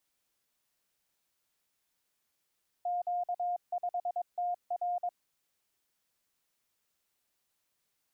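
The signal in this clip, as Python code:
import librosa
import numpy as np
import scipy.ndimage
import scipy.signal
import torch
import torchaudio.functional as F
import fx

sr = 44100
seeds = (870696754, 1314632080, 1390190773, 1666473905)

y = fx.morse(sr, text='Q5TR', wpm=22, hz=709.0, level_db=-29.5)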